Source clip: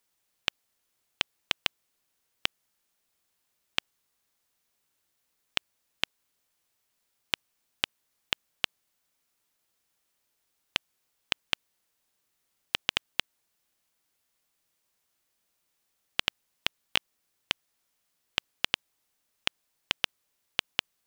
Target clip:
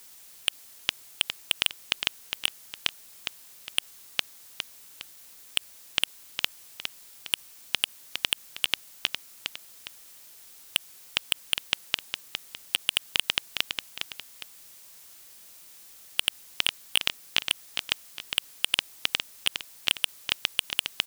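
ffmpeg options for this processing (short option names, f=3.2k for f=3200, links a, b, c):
-filter_complex "[0:a]asplit=2[a][b];[b]aecho=0:1:409|818|1227:0.112|0.0415|0.0154[c];[a][c]amix=inputs=2:normalize=0,asoftclip=type=tanh:threshold=-19.5dB,highshelf=f=3.4k:g=8.5,alimiter=level_in=20.5dB:limit=-1dB:release=50:level=0:latency=1,volume=-1dB"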